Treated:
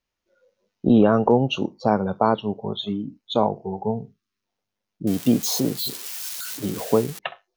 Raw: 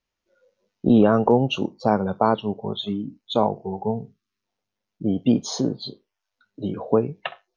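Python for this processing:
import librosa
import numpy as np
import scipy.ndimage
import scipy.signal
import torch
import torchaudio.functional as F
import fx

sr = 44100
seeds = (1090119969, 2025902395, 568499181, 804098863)

y = fx.crossing_spikes(x, sr, level_db=-20.0, at=(5.07, 7.19))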